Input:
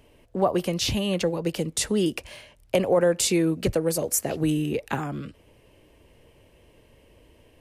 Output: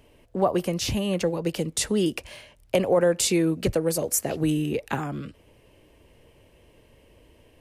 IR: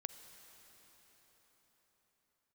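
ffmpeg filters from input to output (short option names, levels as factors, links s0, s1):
-filter_complex "[0:a]asettb=1/sr,asplit=3[s0][s1][s2];[s0]atrim=end=0.594[s3];[s1]atrim=start=0.59:end=1.24,asetpts=PTS-STARTPTS,afade=t=in:d=0.004:c=qsin,afade=t=out:st=0.646:d=0.004:c=qsin,equalizer=f=3600:w=1.5:g=-5[s4];[s2]atrim=start=1.236[s5];[s3][s4]acrossfade=d=0.004:c1=hsin:c2=qsin[s6];[s6][s5]acrossfade=d=0.004:c1=qsin:c2=hsin"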